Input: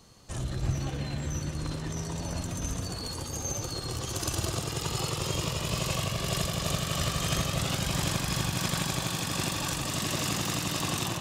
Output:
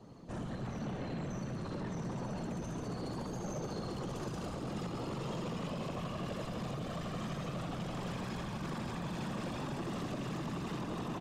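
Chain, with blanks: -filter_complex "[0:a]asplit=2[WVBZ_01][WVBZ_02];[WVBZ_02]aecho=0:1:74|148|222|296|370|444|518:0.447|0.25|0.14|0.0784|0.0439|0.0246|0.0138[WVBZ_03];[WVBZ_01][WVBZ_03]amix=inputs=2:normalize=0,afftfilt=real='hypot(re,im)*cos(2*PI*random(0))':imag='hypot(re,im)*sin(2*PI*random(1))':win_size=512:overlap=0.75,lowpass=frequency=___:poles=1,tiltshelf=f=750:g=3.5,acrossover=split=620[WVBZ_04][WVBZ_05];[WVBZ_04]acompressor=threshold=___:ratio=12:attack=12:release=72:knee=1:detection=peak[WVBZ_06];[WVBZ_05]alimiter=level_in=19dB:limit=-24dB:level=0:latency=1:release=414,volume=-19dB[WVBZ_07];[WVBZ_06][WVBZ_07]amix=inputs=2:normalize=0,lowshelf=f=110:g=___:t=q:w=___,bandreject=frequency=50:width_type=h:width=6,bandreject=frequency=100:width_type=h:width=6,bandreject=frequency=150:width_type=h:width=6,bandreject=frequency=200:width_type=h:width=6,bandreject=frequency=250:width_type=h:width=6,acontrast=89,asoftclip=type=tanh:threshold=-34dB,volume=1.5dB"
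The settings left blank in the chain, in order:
1100, -44dB, -7, 1.5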